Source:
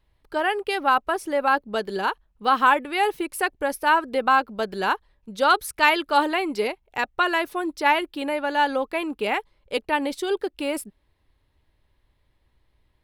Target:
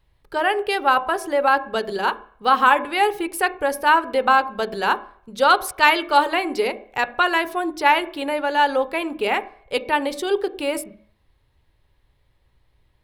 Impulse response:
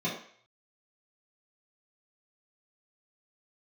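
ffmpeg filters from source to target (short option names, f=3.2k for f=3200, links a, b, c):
-filter_complex "[0:a]asplit=2[a][b];[1:a]atrim=start_sample=2205,lowpass=2.6k[c];[b][c]afir=irnorm=-1:irlink=0,volume=-18dB[d];[a][d]amix=inputs=2:normalize=0,volume=3dB"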